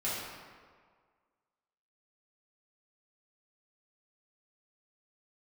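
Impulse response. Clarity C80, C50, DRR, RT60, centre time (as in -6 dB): 1.0 dB, -1.5 dB, -10.0 dB, 1.8 s, 104 ms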